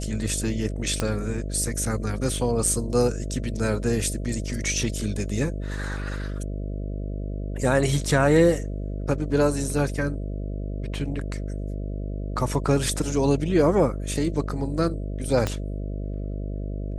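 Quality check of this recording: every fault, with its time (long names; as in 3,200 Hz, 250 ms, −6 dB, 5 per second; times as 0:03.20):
mains buzz 50 Hz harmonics 13 −30 dBFS
0:01.00: click −10 dBFS
0:15.47: click −11 dBFS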